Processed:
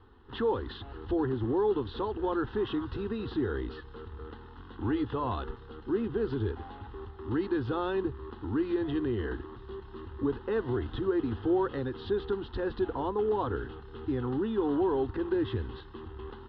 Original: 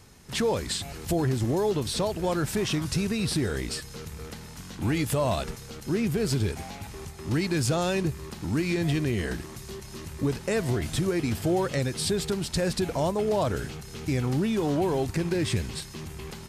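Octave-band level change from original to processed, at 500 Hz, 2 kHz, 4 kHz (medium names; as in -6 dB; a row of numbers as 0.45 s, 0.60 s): -2.0 dB, -8.0 dB, -13.5 dB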